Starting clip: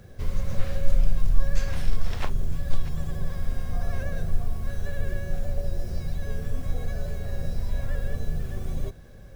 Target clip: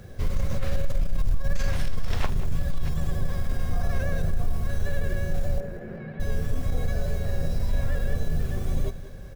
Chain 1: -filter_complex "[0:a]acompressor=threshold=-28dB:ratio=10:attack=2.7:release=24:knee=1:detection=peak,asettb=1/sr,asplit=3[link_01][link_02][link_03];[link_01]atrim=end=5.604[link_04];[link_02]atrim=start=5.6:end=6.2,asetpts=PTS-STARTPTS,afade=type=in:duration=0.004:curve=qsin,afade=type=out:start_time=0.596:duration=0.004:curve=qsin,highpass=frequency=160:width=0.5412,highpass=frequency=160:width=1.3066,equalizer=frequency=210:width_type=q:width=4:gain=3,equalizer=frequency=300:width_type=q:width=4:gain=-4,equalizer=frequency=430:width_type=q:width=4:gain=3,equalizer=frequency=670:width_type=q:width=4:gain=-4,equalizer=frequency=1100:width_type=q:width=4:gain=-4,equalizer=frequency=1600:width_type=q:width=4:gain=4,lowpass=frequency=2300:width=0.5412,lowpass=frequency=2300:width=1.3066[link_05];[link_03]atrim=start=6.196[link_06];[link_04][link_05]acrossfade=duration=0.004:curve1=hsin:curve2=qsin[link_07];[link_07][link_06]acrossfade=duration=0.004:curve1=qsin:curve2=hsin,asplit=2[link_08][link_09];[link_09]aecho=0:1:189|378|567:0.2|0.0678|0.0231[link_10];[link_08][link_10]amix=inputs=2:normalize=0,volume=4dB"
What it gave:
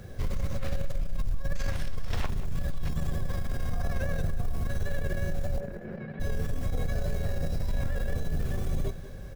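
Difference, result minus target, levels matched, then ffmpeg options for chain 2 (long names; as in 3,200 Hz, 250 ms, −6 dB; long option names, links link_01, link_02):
downward compressor: peak gain reduction +6 dB
-filter_complex "[0:a]acompressor=threshold=-21.5dB:ratio=10:attack=2.7:release=24:knee=1:detection=peak,asettb=1/sr,asplit=3[link_01][link_02][link_03];[link_01]atrim=end=5.604[link_04];[link_02]atrim=start=5.6:end=6.2,asetpts=PTS-STARTPTS,afade=type=in:duration=0.004:curve=qsin,afade=type=out:start_time=0.596:duration=0.004:curve=qsin,highpass=frequency=160:width=0.5412,highpass=frequency=160:width=1.3066,equalizer=frequency=210:width_type=q:width=4:gain=3,equalizer=frequency=300:width_type=q:width=4:gain=-4,equalizer=frequency=430:width_type=q:width=4:gain=3,equalizer=frequency=670:width_type=q:width=4:gain=-4,equalizer=frequency=1100:width_type=q:width=4:gain=-4,equalizer=frequency=1600:width_type=q:width=4:gain=4,lowpass=frequency=2300:width=0.5412,lowpass=frequency=2300:width=1.3066[link_05];[link_03]atrim=start=6.196[link_06];[link_04][link_05]acrossfade=duration=0.004:curve1=hsin:curve2=qsin[link_07];[link_07][link_06]acrossfade=duration=0.004:curve1=qsin:curve2=hsin,asplit=2[link_08][link_09];[link_09]aecho=0:1:189|378|567:0.2|0.0678|0.0231[link_10];[link_08][link_10]amix=inputs=2:normalize=0,volume=4dB"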